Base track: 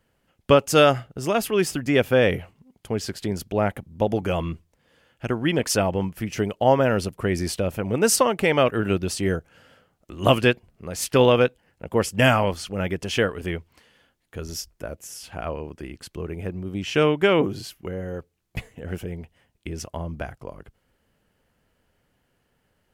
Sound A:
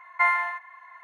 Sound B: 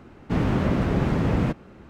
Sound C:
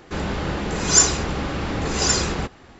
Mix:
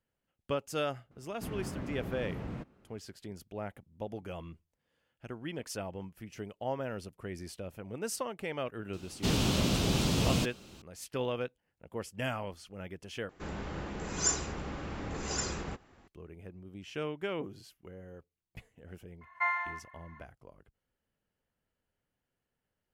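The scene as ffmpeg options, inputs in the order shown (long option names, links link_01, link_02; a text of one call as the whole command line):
ffmpeg -i bed.wav -i cue0.wav -i cue1.wav -i cue2.wav -filter_complex "[2:a]asplit=2[link_01][link_02];[0:a]volume=-17.5dB[link_03];[link_02]aexciter=amount=8.8:drive=6:freq=2800[link_04];[3:a]equalizer=frequency=4100:width_type=o:width=0.93:gain=-4.5[link_05];[1:a]aresample=16000,aresample=44100[link_06];[link_03]asplit=2[link_07][link_08];[link_07]atrim=end=13.294[link_09];[link_05]atrim=end=2.79,asetpts=PTS-STARTPTS,volume=-13.5dB[link_10];[link_08]atrim=start=16.076[link_11];[link_01]atrim=end=1.89,asetpts=PTS-STARTPTS,volume=-17.5dB,afade=type=in:duration=0.004:curve=hsin,afade=type=out:start_time=1.886:duration=0.004:curve=hsin,adelay=1110[link_12];[link_04]atrim=end=1.89,asetpts=PTS-STARTPTS,volume=-7dB,afade=type=in:duration=0.004:curve=hsin,afade=type=out:start_time=1.886:duration=0.004:curve=hsin,adelay=8930[link_13];[link_06]atrim=end=1.03,asetpts=PTS-STARTPTS,volume=-9dB,afade=type=in:duration=0.004:curve=hsin,afade=type=out:start_time=1.026:duration=0.004:curve=hsin,adelay=19210[link_14];[link_09][link_10]acrossfade=duration=0.004:curve1=hsin:curve2=hsin[link_15];[link_15][link_11]acrossfade=duration=0.004:curve1=hsin:curve2=hsin[link_16];[link_16][link_12][link_13][link_14]amix=inputs=4:normalize=0" out.wav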